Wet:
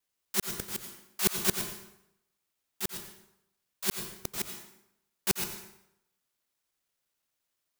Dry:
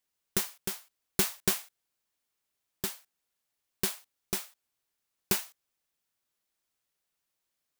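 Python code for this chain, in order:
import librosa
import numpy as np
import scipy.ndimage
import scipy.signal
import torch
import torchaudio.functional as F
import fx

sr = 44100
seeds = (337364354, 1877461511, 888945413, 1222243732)

y = fx.local_reverse(x, sr, ms=85.0)
y = fx.rev_plate(y, sr, seeds[0], rt60_s=0.79, hf_ratio=0.8, predelay_ms=80, drr_db=6.0)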